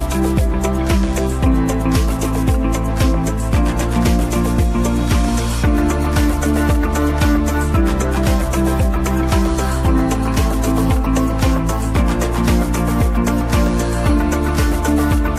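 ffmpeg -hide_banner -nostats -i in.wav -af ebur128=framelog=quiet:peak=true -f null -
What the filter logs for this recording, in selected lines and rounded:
Integrated loudness:
  I:         -16.8 LUFS
  Threshold: -26.8 LUFS
Loudness range:
  LRA:         0.7 LU
  Threshold: -36.8 LUFS
  LRA low:   -17.2 LUFS
  LRA high:  -16.5 LUFS
True peak:
  Peak:       -3.6 dBFS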